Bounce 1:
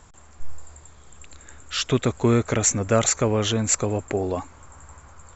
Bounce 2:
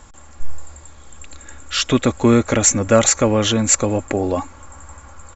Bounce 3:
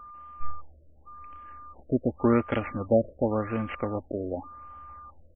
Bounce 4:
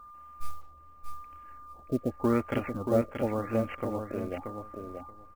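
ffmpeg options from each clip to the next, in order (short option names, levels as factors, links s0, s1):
-af "aecho=1:1:3.6:0.41,volume=1.88"
-af "aeval=exprs='val(0)+0.0355*sin(2*PI*1200*n/s)':c=same,aeval=exprs='0.891*(cos(1*acos(clip(val(0)/0.891,-1,1)))-cos(1*PI/2))+0.112*(cos(3*acos(clip(val(0)/0.891,-1,1)))-cos(3*PI/2))+0.0316*(cos(7*acos(clip(val(0)/0.891,-1,1)))-cos(7*PI/2))':c=same,afftfilt=real='re*lt(b*sr/1024,660*pow(3400/660,0.5+0.5*sin(2*PI*0.89*pts/sr)))':imag='im*lt(b*sr/1024,660*pow(3400/660,0.5+0.5*sin(2*PI*0.89*pts/sr)))':win_size=1024:overlap=0.75,volume=0.531"
-filter_complex "[0:a]acrusher=bits=7:mode=log:mix=0:aa=0.000001,asplit=2[s0][s1];[s1]aecho=0:1:630|1260|1890:0.501|0.0802|0.0128[s2];[s0][s2]amix=inputs=2:normalize=0,volume=0.631"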